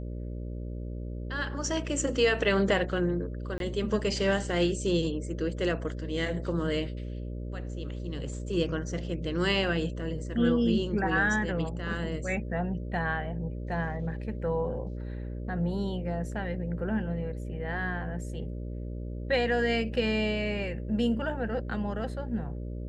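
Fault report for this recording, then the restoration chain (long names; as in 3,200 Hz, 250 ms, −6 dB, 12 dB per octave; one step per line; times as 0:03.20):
mains buzz 60 Hz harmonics 10 −36 dBFS
0:03.58–0:03.60: drop-out 22 ms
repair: hum removal 60 Hz, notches 10
repair the gap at 0:03.58, 22 ms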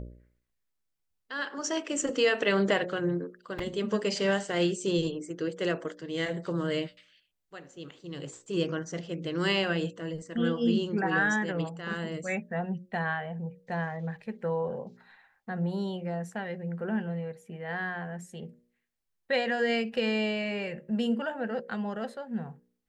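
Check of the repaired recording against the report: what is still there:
none of them is left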